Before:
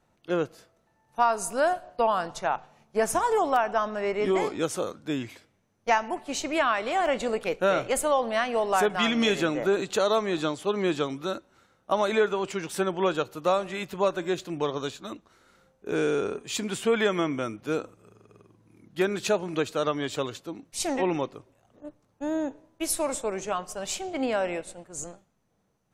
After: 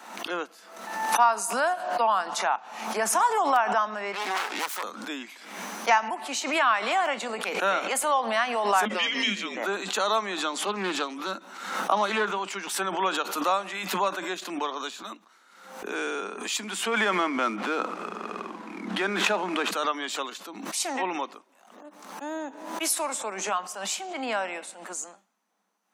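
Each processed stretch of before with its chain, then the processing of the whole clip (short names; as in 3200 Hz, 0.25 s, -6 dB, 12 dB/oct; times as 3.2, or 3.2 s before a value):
4.12–4.83 self-modulated delay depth 0.67 ms + low shelf 410 Hz -11.5 dB
8.85–9.57 LPF 6800 Hz + band shelf 1300 Hz -11.5 dB 1.1 oct + frequency shift -200 Hz
10.52–12.37 low shelf 220 Hz +6.5 dB + Doppler distortion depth 0.18 ms
16.88–19.71 median filter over 9 samples + air absorption 59 m + fast leveller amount 70%
whole clip: steep high-pass 190 Hz 96 dB/oct; resonant low shelf 670 Hz -8 dB, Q 1.5; backwards sustainer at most 59 dB/s; gain +1.5 dB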